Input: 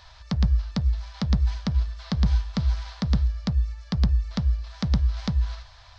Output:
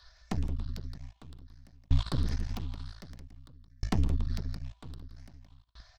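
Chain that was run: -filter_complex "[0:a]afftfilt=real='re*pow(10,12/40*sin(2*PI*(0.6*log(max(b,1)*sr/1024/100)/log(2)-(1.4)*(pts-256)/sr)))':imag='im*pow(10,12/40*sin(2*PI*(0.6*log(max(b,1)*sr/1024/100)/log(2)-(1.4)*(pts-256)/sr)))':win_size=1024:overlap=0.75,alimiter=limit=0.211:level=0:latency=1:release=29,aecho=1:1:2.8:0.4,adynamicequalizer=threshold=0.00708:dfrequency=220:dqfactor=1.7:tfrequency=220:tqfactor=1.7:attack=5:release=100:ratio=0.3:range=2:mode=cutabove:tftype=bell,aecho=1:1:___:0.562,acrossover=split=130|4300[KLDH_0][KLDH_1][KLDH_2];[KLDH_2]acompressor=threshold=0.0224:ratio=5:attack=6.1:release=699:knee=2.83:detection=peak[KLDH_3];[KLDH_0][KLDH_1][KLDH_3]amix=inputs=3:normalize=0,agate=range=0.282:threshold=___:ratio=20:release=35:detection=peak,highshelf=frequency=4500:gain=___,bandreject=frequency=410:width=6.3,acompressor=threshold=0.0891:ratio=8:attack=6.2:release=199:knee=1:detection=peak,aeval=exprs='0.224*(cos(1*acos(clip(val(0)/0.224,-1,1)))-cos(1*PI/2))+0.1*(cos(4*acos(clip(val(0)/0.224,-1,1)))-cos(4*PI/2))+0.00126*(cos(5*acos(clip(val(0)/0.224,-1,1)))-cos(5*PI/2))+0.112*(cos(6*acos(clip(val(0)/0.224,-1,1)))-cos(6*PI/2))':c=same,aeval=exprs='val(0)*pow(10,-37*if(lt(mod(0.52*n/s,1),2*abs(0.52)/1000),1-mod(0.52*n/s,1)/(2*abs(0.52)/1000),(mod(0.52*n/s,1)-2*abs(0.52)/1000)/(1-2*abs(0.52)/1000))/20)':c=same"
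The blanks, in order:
170, 0.0158, 3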